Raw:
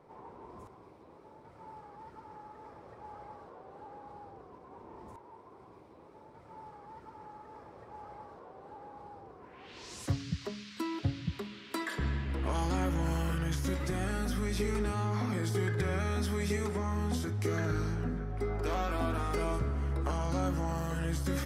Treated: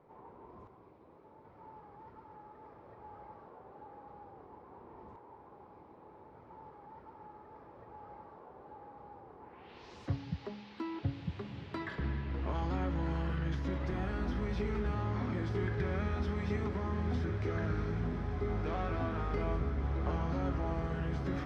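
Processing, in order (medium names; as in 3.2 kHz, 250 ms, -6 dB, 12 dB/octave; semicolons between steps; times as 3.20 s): distance through air 240 m; echo that smears into a reverb 1445 ms, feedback 73%, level -7.5 dB; trim -3 dB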